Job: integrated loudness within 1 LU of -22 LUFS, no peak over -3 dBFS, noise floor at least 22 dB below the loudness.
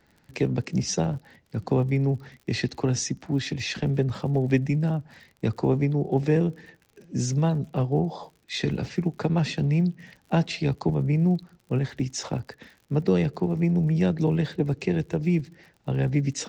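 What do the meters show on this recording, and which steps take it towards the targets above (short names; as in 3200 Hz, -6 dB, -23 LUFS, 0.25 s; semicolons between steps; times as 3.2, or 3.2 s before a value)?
ticks 53/s; loudness -26.0 LUFS; peak -9.5 dBFS; loudness target -22.0 LUFS
-> de-click; gain +4 dB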